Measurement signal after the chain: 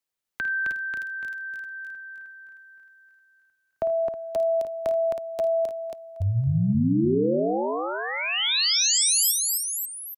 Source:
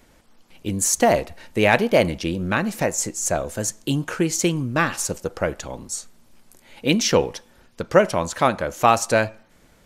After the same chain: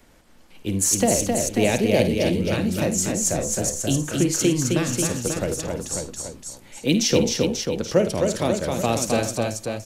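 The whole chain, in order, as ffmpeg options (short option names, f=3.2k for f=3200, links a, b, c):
-filter_complex "[0:a]acrossover=split=230|580|2700[a][b][c][d];[c]acompressor=threshold=-39dB:ratio=6[e];[a][b][e][d]amix=inputs=4:normalize=0,aecho=1:1:52|80|263|319|539|829:0.266|0.126|0.631|0.2|0.473|0.211"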